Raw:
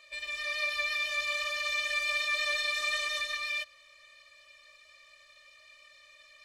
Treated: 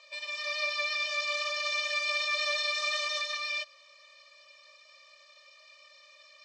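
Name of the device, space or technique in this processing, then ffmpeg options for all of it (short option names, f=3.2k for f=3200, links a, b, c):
phone speaker on a table: -af "highpass=f=340:w=0.5412,highpass=f=340:w=1.3066,equalizer=f=390:t=q:w=4:g=-6,equalizer=f=550:t=q:w=4:g=5,equalizer=f=960:t=q:w=4:g=9,equalizer=f=1.8k:t=q:w=4:g=-4,equalizer=f=5.2k:t=q:w=4:g=9,lowpass=f=7.3k:w=0.5412,lowpass=f=7.3k:w=1.3066"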